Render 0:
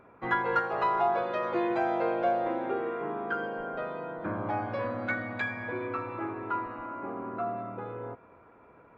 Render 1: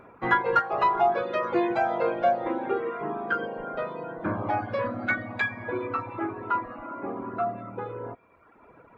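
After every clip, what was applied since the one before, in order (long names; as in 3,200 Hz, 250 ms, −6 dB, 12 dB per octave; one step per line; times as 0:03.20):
reverb reduction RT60 1.2 s
level +6 dB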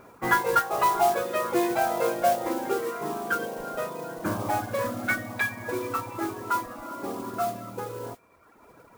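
noise that follows the level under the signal 15 dB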